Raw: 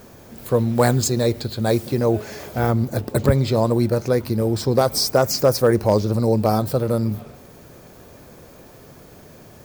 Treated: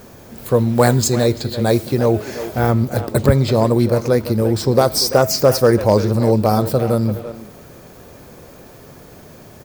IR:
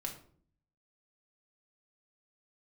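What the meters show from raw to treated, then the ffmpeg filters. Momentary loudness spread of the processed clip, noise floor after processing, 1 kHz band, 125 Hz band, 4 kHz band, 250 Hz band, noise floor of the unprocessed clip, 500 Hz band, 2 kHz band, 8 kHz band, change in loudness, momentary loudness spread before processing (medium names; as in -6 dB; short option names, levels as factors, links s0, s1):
6 LU, -42 dBFS, +3.5 dB, +3.5 dB, +3.5 dB, +3.5 dB, -45 dBFS, +3.5 dB, +4.0 dB, +3.5 dB, +3.5 dB, 6 LU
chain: -filter_complex "[0:a]bandreject=f=323.2:t=h:w=4,bandreject=f=646.4:t=h:w=4,bandreject=f=969.6:t=h:w=4,bandreject=f=1292.8:t=h:w=4,bandreject=f=1616:t=h:w=4,bandreject=f=1939.2:t=h:w=4,bandreject=f=2262.4:t=h:w=4,bandreject=f=2585.6:t=h:w=4,bandreject=f=2908.8:t=h:w=4,bandreject=f=3232:t=h:w=4,bandreject=f=3555.2:t=h:w=4,bandreject=f=3878.4:t=h:w=4,bandreject=f=4201.6:t=h:w=4,bandreject=f=4524.8:t=h:w=4,bandreject=f=4848:t=h:w=4,bandreject=f=5171.2:t=h:w=4,bandreject=f=5494.4:t=h:w=4,bandreject=f=5817.6:t=h:w=4,bandreject=f=6140.8:t=h:w=4,bandreject=f=6464:t=h:w=4,bandreject=f=6787.2:t=h:w=4,bandreject=f=7110.4:t=h:w=4,bandreject=f=7433.6:t=h:w=4,bandreject=f=7756.8:t=h:w=4,bandreject=f=8080:t=h:w=4,bandreject=f=8403.2:t=h:w=4,bandreject=f=8726.4:t=h:w=4,bandreject=f=9049.6:t=h:w=4,asplit=2[s0][s1];[s1]adelay=340,highpass=300,lowpass=3400,asoftclip=type=hard:threshold=0.188,volume=0.316[s2];[s0][s2]amix=inputs=2:normalize=0,volume=1.5"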